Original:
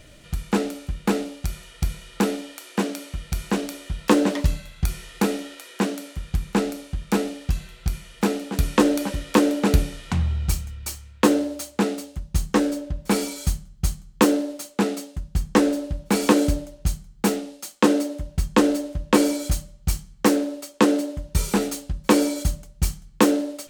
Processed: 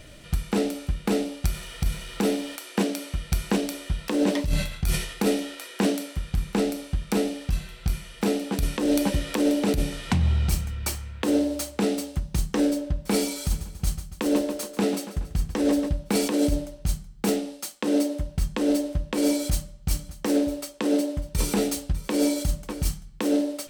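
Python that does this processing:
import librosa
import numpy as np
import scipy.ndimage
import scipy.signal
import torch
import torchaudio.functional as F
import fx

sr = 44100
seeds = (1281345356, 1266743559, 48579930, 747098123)

y = fx.law_mismatch(x, sr, coded='mu', at=(1.45, 2.56))
y = fx.sustainer(y, sr, db_per_s=85.0, at=(4.43, 6.06))
y = fx.band_squash(y, sr, depth_pct=40, at=(8.85, 12.39))
y = fx.echo_feedback(y, sr, ms=140, feedback_pct=51, wet_db=-15.0, at=(13.44, 15.88), fade=0.02)
y = fx.echo_single(y, sr, ms=596, db=-19.5, at=(19.88, 22.88), fade=0.02)
y = fx.notch(y, sr, hz=6800.0, q=13.0)
y = fx.dynamic_eq(y, sr, hz=1300.0, q=1.6, threshold_db=-41.0, ratio=4.0, max_db=-6)
y = fx.over_compress(y, sr, threshold_db=-21.0, ratio=-1.0)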